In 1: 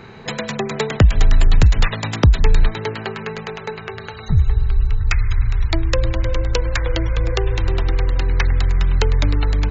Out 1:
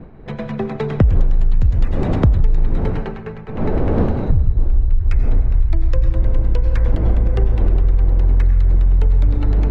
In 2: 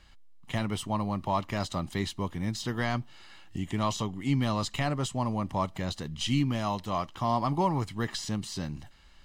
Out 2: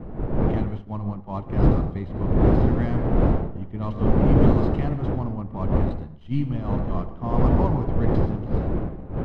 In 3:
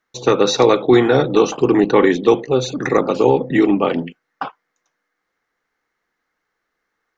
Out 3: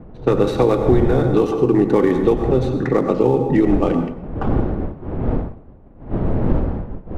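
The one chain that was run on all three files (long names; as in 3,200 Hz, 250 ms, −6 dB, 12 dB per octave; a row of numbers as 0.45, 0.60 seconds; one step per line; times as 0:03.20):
gap after every zero crossing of 0.07 ms
wind on the microphone 480 Hz −26 dBFS
upward compression, threshold −26 dBFS
low-pass that shuts in the quiet parts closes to 2,800 Hz, open at −8 dBFS
dense smooth reverb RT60 0.82 s, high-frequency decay 0.65×, pre-delay 80 ms, DRR 8 dB
downward expander −23 dBFS
spectral tilt −3 dB per octave
downward compressor 6 to 1, threshold −6 dBFS
level −4 dB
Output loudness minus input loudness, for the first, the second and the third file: +1.0, +7.0, −3.0 LU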